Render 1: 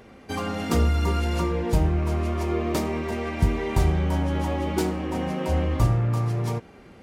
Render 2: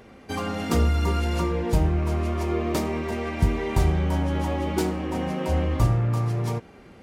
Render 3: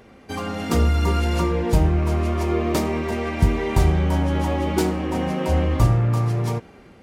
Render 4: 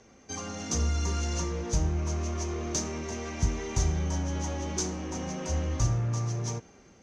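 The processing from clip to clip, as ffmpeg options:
-af anull
-af "dynaudnorm=f=300:g=5:m=4dB"
-filter_complex "[0:a]acrossover=split=160|3300[a][b][c];[b]asoftclip=type=tanh:threshold=-23.5dB[d];[c]lowpass=f=6.2k:t=q:w=13[e];[a][d][e]amix=inputs=3:normalize=0,volume=-9dB"

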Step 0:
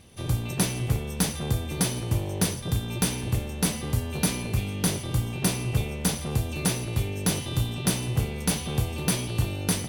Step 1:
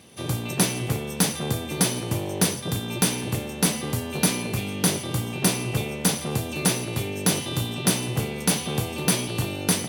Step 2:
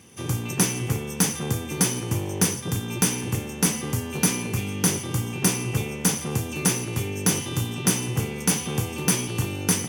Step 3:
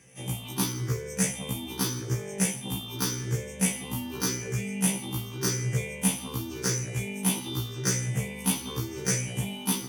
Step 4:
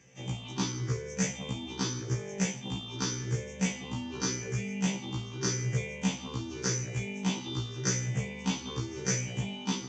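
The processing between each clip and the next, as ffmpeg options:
-af "highpass=160,volume=4.5dB"
-af "equalizer=f=100:t=o:w=0.33:g=4,equalizer=f=630:t=o:w=0.33:g=-10,equalizer=f=4k:t=o:w=0.33:g=-10,equalizer=f=6.3k:t=o:w=0.33:g=6"
-af "afftfilt=real='re*pow(10,11/40*sin(2*PI*(0.53*log(max(b,1)*sr/1024/100)/log(2)-(0.87)*(pts-256)/sr)))':imag='im*pow(10,11/40*sin(2*PI*(0.53*log(max(b,1)*sr/1024/100)/log(2)-(0.87)*(pts-256)/sr)))':win_size=1024:overlap=0.75,afftfilt=real='re*1.73*eq(mod(b,3),0)':imag='im*1.73*eq(mod(b,3),0)':win_size=2048:overlap=0.75,volume=-4dB"
-af "aresample=16000,aresample=44100,volume=-2.5dB"

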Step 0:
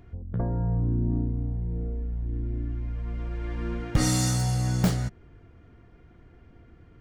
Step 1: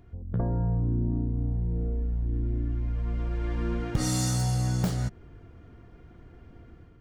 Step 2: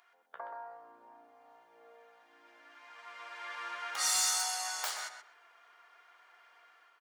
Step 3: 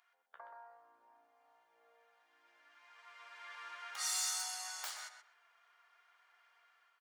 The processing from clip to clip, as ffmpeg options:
-af "dynaudnorm=f=110:g=5:m=6dB,equalizer=f=2.1k:t=o:w=0.83:g=-3,acompressor=threshold=-20dB:ratio=6,volume=-3dB"
-filter_complex "[0:a]highpass=f=910:w=0.5412,highpass=f=910:w=1.3066,volume=27.5dB,asoftclip=hard,volume=-27.5dB,asplit=2[a][b];[b]adelay=127,lowpass=f=3.2k:p=1,volume=-7dB,asplit=2[c][d];[d]adelay=127,lowpass=f=3.2k:p=1,volume=0.22,asplit=2[e][f];[f]adelay=127,lowpass=f=3.2k:p=1,volume=0.22[g];[a][c][e][g]amix=inputs=4:normalize=0,volume=4dB"
-af "equalizer=f=240:t=o:w=2.8:g=-10,volume=-6.5dB"

